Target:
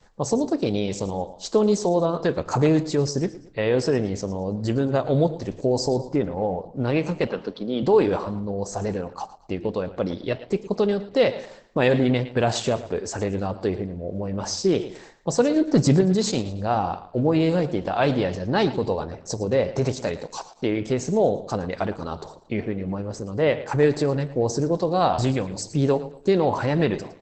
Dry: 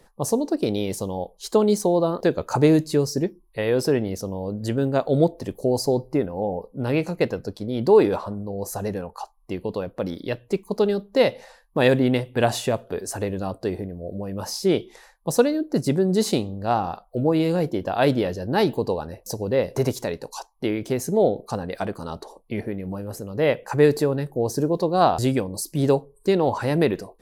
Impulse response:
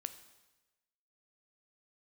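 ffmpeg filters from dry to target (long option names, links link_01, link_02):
-filter_complex "[0:a]adynamicequalizer=threshold=0.0224:dfrequency=350:dqfactor=1.5:tfrequency=350:tqfactor=1.5:attack=5:release=100:ratio=0.375:range=2.5:mode=cutabove:tftype=bell,asplit=2[link_01][link_02];[link_02]alimiter=limit=-15.5dB:level=0:latency=1:release=34,volume=1.5dB[link_03];[link_01][link_03]amix=inputs=2:normalize=0,asettb=1/sr,asplit=3[link_04][link_05][link_06];[link_04]atrim=end=15.564[link_07];[link_05]atrim=start=15.56:end=16.01,asetpts=PTS-STARTPTS,afade=type=in:duration=0.004:curve=qsin,afade=type=out:start_time=0.446:duration=0.004:curve=qsin,acontrast=66[link_08];[link_06]atrim=start=16.006[link_09];[link_07][link_08]acrossfade=duration=0.004:curve1=hsin:curve2=qsin[link_10];[link_10][link_09]acrossfade=duration=0.004:curve1=qsin:curve2=hsin,flanger=delay=9.6:depth=6.7:regen=-87:speed=0.65:shape=sinusoidal,asettb=1/sr,asplit=3[link_11][link_12][link_13];[link_11]atrim=end=7.274[link_14];[link_12]atrim=start=7.27:end=7.83,asetpts=PTS-STARTPTS,afade=type=in:duration=0.004:curve=qsin,afade=type=out:start_time=0.556:duration=0.004:curve=qsin,highpass=frequency=180:width=0.5412,highpass=frequency=180:width=1.3066,equalizer=frequency=1200:width_type=q:width=4:gain=9,equalizer=frequency=2000:width_type=q:width=4:gain=-4,equalizer=frequency=3100:width_type=q:width=4:gain=6,lowpass=frequency=4700:width=0.5412,lowpass=frequency=4700:width=1.3066[link_15];[link_13]atrim=start=7.826[link_16];[link_14][link_15]acrossfade=duration=0.004:curve1=hsin:curve2=qsin[link_17];[link_17][link_16]acrossfade=duration=0.004:curve1=qsin:curve2=hsin,aecho=1:1:112|224|336:0.178|0.0605|0.0206" -ar 48000 -c:a libopus -b:a 12k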